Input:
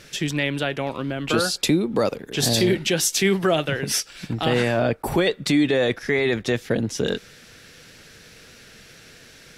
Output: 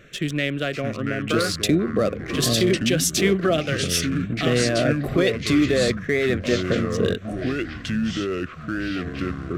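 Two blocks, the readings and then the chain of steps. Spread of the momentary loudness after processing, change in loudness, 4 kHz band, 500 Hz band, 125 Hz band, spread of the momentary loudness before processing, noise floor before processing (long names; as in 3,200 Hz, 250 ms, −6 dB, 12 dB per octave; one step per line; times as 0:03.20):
8 LU, −0.5 dB, 0.0 dB, +0.5 dB, +2.5 dB, 7 LU, −48 dBFS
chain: adaptive Wiener filter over 9 samples
delay with pitch and tempo change per echo 554 ms, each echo −5 semitones, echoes 3, each echo −6 dB
Butterworth band-reject 890 Hz, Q 2.4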